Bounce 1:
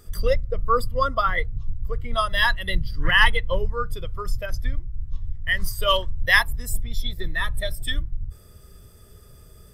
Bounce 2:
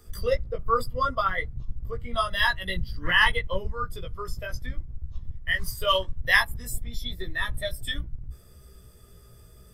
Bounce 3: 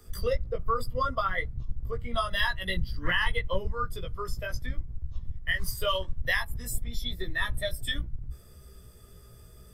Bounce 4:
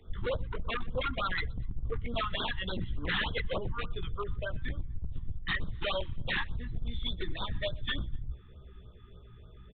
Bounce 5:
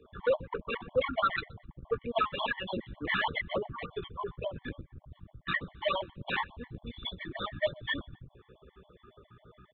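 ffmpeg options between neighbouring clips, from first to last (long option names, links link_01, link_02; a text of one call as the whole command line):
ffmpeg -i in.wav -filter_complex "[0:a]flanger=delay=15.5:depth=2.1:speed=0.81,acrossover=split=150|820|3100[link_01][link_02][link_03][link_04];[link_01]aeval=exprs='clip(val(0),-1,0.0141)':channel_layout=same[link_05];[link_05][link_02][link_03][link_04]amix=inputs=4:normalize=0" out.wav
ffmpeg -i in.wav -filter_complex "[0:a]acrossover=split=130[link_01][link_02];[link_02]acompressor=threshold=-24dB:ratio=10[link_03];[link_01][link_03]amix=inputs=2:normalize=0" out.wav
ffmpeg -i in.wav -af "aresample=8000,aeval=exprs='0.0562*(abs(mod(val(0)/0.0562+3,4)-2)-1)':channel_layout=same,aresample=44100,aecho=1:1:123|246:0.0631|0.0208,afftfilt=real='re*(1-between(b*sr/1024,510*pow(2300/510,0.5+0.5*sin(2*PI*3.4*pts/sr))/1.41,510*pow(2300/510,0.5+0.5*sin(2*PI*3.4*pts/sr))*1.41))':imag='im*(1-between(b*sr/1024,510*pow(2300/510,0.5+0.5*sin(2*PI*3.4*pts/sr))/1.41,510*pow(2300/510,0.5+0.5*sin(2*PI*3.4*pts/sr))*1.41))':win_size=1024:overlap=0.75" out.wav
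ffmpeg -i in.wav -af "bandpass=frequency=770:width_type=q:width=0.53:csg=0,aeval=exprs='0.0631*(cos(1*acos(clip(val(0)/0.0631,-1,1)))-cos(1*PI/2))+0.000631*(cos(2*acos(clip(val(0)/0.0631,-1,1)))-cos(2*PI/2))':channel_layout=same,afftfilt=real='re*gt(sin(2*PI*7.3*pts/sr)*(1-2*mod(floor(b*sr/1024/580),2)),0)':imag='im*gt(sin(2*PI*7.3*pts/sr)*(1-2*mod(floor(b*sr/1024/580),2)),0)':win_size=1024:overlap=0.75,volume=8.5dB" out.wav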